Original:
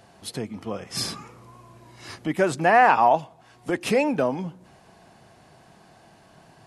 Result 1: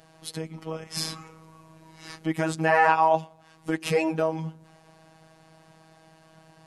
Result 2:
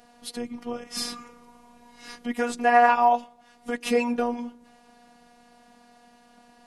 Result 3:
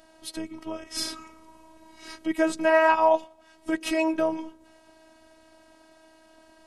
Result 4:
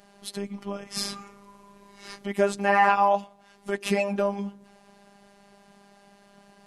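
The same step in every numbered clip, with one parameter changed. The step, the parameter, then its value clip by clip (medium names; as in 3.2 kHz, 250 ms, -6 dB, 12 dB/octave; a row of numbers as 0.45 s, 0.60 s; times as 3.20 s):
robot voice, frequency: 160 Hz, 240 Hz, 320 Hz, 200 Hz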